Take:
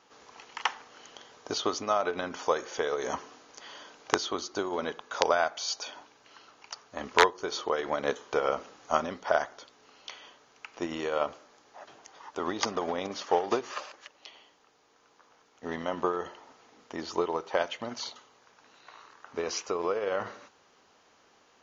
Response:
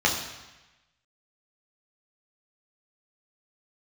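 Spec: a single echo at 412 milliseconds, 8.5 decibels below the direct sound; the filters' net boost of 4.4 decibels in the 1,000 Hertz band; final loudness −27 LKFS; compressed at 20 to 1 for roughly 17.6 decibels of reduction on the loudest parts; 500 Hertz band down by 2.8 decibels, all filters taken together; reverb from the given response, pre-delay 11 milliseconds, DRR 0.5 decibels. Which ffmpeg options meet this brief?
-filter_complex "[0:a]equalizer=frequency=500:width_type=o:gain=-5.5,equalizer=frequency=1000:width_type=o:gain=7,acompressor=threshold=-29dB:ratio=20,aecho=1:1:412:0.376,asplit=2[link_01][link_02];[1:a]atrim=start_sample=2205,adelay=11[link_03];[link_02][link_03]afir=irnorm=-1:irlink=0,volume=-16dB[link_04];[link_01][link_04]amix=inputs=2:normalize=0,volume=7.5dB"

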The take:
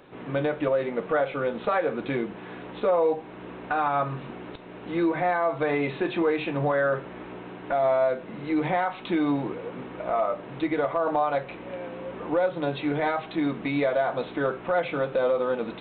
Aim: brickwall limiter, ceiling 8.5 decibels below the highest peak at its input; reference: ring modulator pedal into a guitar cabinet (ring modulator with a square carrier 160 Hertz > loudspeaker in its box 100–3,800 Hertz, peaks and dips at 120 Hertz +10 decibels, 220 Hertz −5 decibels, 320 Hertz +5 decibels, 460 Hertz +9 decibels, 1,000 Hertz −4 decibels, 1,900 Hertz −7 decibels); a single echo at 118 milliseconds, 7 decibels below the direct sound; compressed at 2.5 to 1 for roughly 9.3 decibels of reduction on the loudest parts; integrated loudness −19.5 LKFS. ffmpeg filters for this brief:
ffmpeg -i in.wav -af "acompressor=threshold=-34dB:ratio=2.5,alimiter=level_in=4.5dB:limit=-24dB:level=0:latency=1,volume=-4.5dB,aecho=1:1:118:0.447,aeval=exprs='val(0)*sgn(sin(2*PI*160*n/s))':channel_layout=same,highpass=100,equalizer=frequency=120:width_type=q:width=4:gain=10,equalizer=frequency=220:width_type=q:width=4:gain=-5,equalizer=frequency=320:width_type=q:width=4:gain=5,equalizer=frequency=460:width_type=q:width=4:gain=9,equalizer=frequency=1000:width_type=q:width=4:gain=-4,equalizer=frequency=1900:width_type=q:width=4:gain=-7,lowpass=frequency=3800:width=0.5412,lowpass=frequency=3800:width=1.3066,volume=14.5dB" out.wav

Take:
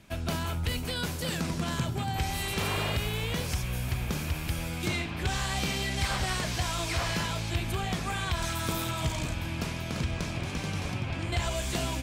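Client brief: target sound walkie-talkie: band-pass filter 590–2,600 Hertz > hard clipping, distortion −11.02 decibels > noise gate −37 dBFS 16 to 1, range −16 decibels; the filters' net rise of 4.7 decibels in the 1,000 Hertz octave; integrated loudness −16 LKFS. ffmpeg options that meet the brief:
ffmpeg -i in.wav -af "highpass=590,lowpass=2600,equalizer=frequency=1000:width_type=o:gain=7,asoftclip=type=hard:threshold=-31.5dB,agate=range=-16dB:threshold=-37dB:ratio=16,volume=20dB" out.wav

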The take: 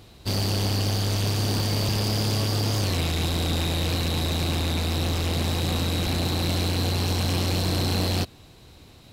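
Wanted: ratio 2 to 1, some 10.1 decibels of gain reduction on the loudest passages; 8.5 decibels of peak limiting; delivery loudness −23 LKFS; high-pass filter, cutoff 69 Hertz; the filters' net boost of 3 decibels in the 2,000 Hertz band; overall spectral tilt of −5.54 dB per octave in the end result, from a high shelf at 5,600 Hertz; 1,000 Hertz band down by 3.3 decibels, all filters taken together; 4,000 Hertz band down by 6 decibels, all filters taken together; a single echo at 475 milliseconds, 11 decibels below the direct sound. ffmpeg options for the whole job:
ffmpeg -i in.wav -af "highpass=69,equalizer=frequency=1000:width_type=o:gain=-6,equalizer=frequency=2000:width_type=o:gain=8.5,equalizer=frequency=4000:width_type=o:gain=-6,highshelf=frequency=5600:gain=-8.5,acompressor=threshold=-41dB:ratio=2,alimiter=level_in=8.5dB:limit=-24dB:level=0:latency=1,volume=-8.5dB,aecho=1:1:475:0.282,volume=18.5dB" out.wav

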